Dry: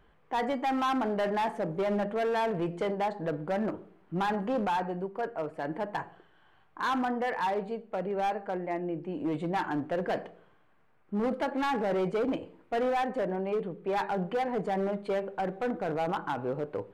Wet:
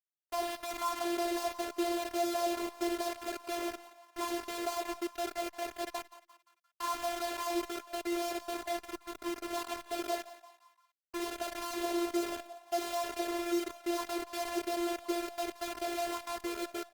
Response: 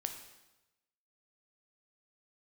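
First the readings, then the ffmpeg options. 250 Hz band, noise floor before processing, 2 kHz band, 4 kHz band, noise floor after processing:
-4.5 dB, -63 dBFS, -5.0 dB, +4.0 dB, -76 dBFS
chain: -filter_complex "[0:a]highpass=f=260:w=0.5412,highpass=f=260:w=1.3066,equalizer=f=280:t=q:w=4:g=-7,equalizer=f=430:t=q:w=4:g=9,equalizer=f=710:t=q:w=4:g=4,equalizer=f=1.2k:t=q:w=4:g=3,equalizer=f=1.7k:t=q:w=4:g=-8,equalizer=f=2.6k:t=q:w=4:g=-9,lowpass=f=3k:w=0.5412,lowpass=f=3k:w=1.3066,bandreject=f=50:t=h:w=6,bandreject=f=100:t=h:w=6,bandreject=f=150:t=h:w=6,bandreject=f=200:t=h:w=6,bandreject=f=250:t=h:w=6,bandreject=f=300:t=h:w=6,bandreject=f=350:t=h:w=6,asplit=2[a][b];[b]aecho=0:1:62|124|186|248:0.178|0.0711|0.0285|0.0114[c];[a][c]amix=inputs=2:normalize=0,acrusher=bits=4:mix=0:aa=0.000001,asplit=2[d][e];[e]asplit=4[f][g][h][i];[f]adelay=174,afreqshift=130,volume=-16.5dB[j];[g]adelay=348,afreqshift=260,volume=-23.1dB[k];[h]adelay=522,afreqshift=390,volume=-29.6dB[l];[i]adelay=696,afreqshift=520,volume=-36.2dB[m];[j][k][l][m]amix=inputs=4:normalize=0[n];[d][n]amix=inputs=2:normalize=0,afftfilt=real='hypot(re,im)*cos(PI*b)':imag='0':win_size=512:overlap=0.75,volume=-4.5dB" -ar 48000 -c:a libopus -b:a 32k

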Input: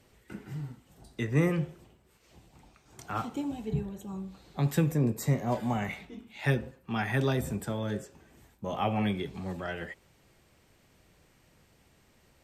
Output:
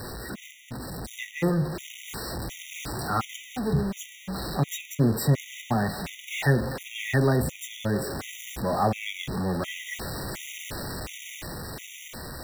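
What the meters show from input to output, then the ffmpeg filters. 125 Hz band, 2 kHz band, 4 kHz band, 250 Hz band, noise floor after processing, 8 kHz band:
+3.5 dB, +5.5 dB, +9.5 dB, +3.0 dB, -47 dBFS, +11.0 dB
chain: -af "aeval=exprs='val(0)+0.5*0.0299*sgn(val(0))':c=same,dynaudnorm=f=170:g=17:m=4dB,afftfilt=real='re*gt(sin(2*PI*1.4*pts/sr)*(1-2*mod(floor(b*sr/1024/1900),2)),0)':imag='im*gt(sin(2*PI*1.4*pts/sr)*(1-2*mod(floor(b*sr/1024/1900),2)),0)':win_size=1024:overlap=0.75"

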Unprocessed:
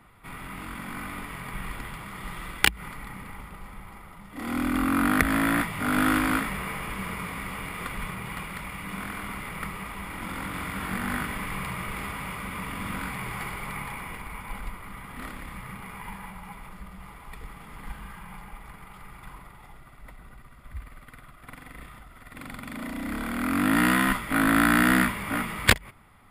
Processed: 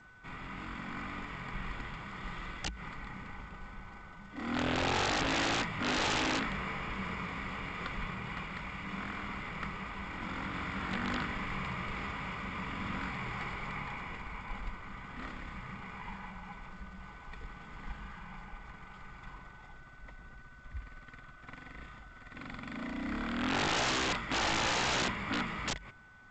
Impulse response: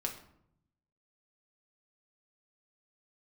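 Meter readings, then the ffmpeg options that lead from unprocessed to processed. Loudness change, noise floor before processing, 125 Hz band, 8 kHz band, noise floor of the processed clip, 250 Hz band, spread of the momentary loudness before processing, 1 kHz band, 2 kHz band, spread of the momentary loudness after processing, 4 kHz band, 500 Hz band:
-8.0 dB, -49 dBFS, -6.5 dB, -6.5 dB, -53 dBFS, -11.0 dB, 22 LU, -6.0 dB, -7.5 dB, 20 LU, -2.0 dB, -3.5 dB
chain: -af "aeval=exprs='(mod(10.6*val(0)+1,2)-1)/10.6':c=same,aeval=exprs='val(0)+0.00251*sin(2*PI*1500*n/s)':c=same,volume=-4.5dB" -ar 16000 -c:a g722

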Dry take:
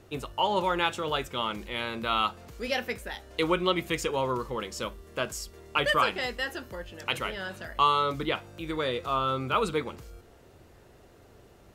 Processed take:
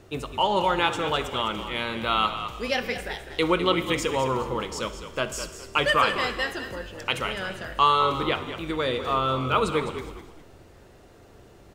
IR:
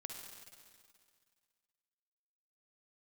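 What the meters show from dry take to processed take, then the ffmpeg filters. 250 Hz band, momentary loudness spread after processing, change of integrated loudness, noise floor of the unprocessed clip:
+4.0 dB, 11 LU, +3.5 dB, -55 dBFS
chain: -filter_complex "[0:a]equalizer=f=12k:w=5.2:g=-11,asplit=4[a][b][c][d];[b]adelay=206,afreqshift=-51,volume=-10.5dB[e];[c]adelay=412,afreqshift=-102,volume=-20.7dB[f];[d]adelay=618,afreqshift=-153,volume=-30.8dB[g];[a][e][f][g]amix=inputs=4:normalize=0,asplit=2[h][i];[1:a]atrim=start_sample=2205,afade=t=out:st=0.39:d=0.01,atrim=end_sample=17640[j];[i][j]afir=irnorm=-1:irlink=0,volume=-1.5dB[k];[h][k]amix=inputs=2:normalize=0"

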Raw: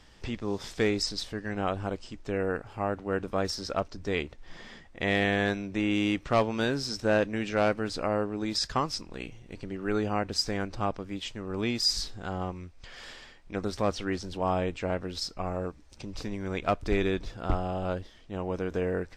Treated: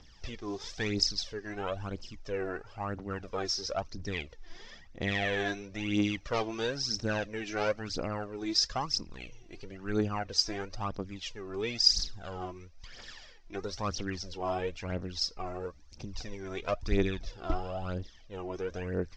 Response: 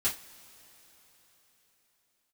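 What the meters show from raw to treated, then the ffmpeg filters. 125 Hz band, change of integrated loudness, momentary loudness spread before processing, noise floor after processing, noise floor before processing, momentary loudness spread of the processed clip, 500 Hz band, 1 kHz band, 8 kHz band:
-3.5 dB, -3.0 dB, 14 LU, -53 dBFS, -53 dBFS, 16 LU, -5.5 dB, -5.0 dB, +1.0 dB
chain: -af "aphaser=in_gain=1:out_gain=1:delay=3.1:decay=0.66:speed=1:type=triangular,highshelf=f=8k:t=q:w=3:g=-12.5,volume=-7dB"

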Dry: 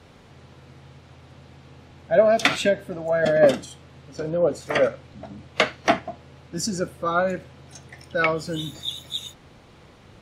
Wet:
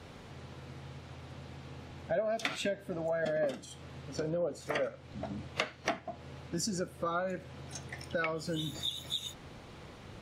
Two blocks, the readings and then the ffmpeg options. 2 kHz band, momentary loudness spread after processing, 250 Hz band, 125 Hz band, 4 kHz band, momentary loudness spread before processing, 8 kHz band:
-12.5 dB, 15 LU, -10.0 dB, -7.0 dB, -8.5 dB, 19 LU, -7.5 dB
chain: -af "acompressor=threshold=-33dB:ratio=4"

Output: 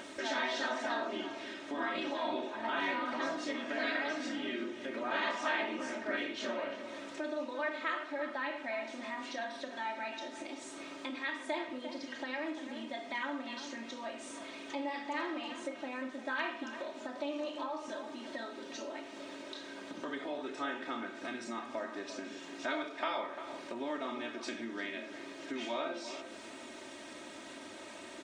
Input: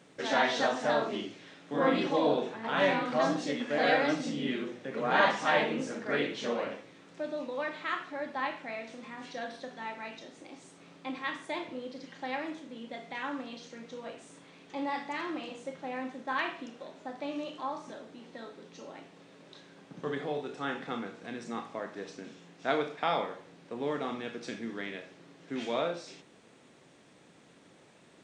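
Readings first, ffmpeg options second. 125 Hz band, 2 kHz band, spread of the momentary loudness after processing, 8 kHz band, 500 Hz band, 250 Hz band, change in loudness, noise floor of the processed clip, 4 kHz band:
under -15 dB, -2.5 dB, 11 LU, 0.0 dB, -6.0 dB, -4.0 dB, -5.5 dB, -48 dBFS, -2.5 dB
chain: -filter_complex "[0:a]afftfilt=real='re*lt(hypot(re,im),0.251)':imag='im*lt(hypot(re,im),0.251)':win_size=1024:overlap=0.75,acompressor=threshold=-42dB:ratio=2,lowshelf=f=240:g=-10,aecho=1:1:3.2:0.97,acompressor=mode=upward:threshold=-41dB:ratio=2.5,asplit=2[a][b];[b]adelay=348,lowpass=f=2.1k:p=1,volume=-9.5dB,asplit=2[c][d];[d]adelay=348,lowpass=f=2.1k:p=1,volume=0.16[e];[a][c][e]amix=inputs=3:normalize=0,adynamicequalizer=threshold=0.00251:dfrequency=4000:dqfactor=0.7:tfrequency=4000:tqfactor=0.7:attack=5:release=100:ratio=0.375:range=2:mode=cutabove:tftype=highshelf,volume=2dB"

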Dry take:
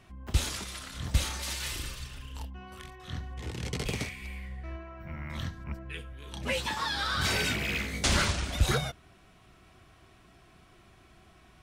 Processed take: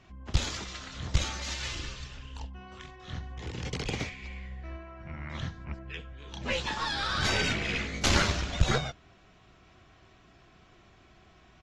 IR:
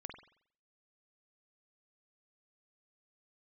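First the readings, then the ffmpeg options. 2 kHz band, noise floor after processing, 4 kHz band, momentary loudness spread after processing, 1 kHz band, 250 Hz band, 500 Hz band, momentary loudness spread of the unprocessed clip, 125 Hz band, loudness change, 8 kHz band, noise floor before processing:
+0.5 dB, -59 dBFS, +0.5 dB, 17 LU, +1.0 dB, +1.0 dB, +1.0 dB, 16 LU, 0.0 dB, +0.5 dB, -2.0 dB, -59 dBFS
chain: -af "aresample=16000,aresample=44100,aeval=exprs='0.211*(cos(1*acos(clip(val(0)/0.211,-1,1)))-cos(1*PI/2))+0.0841*(cos(2*acos(clip(val(0)/0.211,-1,1)))-cos(2*PI/2))+0.00944*(cos(3*acos(clip(val(0)/0.211,-1,1)))-cos(3*PI/2))+0.00119*(cos(5*acos(clip(val(0)/0.211,-1,1)))-cos(5*PI/2))':c=same" -ar 44100 -c:a aac -b:a 32k

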